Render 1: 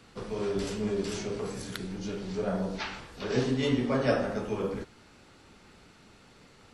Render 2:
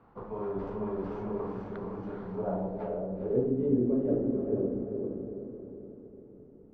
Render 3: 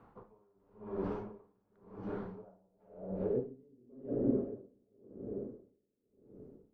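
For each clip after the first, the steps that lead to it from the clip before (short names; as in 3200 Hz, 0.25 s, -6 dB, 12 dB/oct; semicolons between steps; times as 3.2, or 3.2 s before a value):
diffused feedback echo 0.45 s, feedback 47%, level -3 dB; low-pass sweep 980 Hz -> 360 Hz, 2.28–3.76; gain -5 dB
dB-linear tremolo 0.93 Hz, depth 38 dB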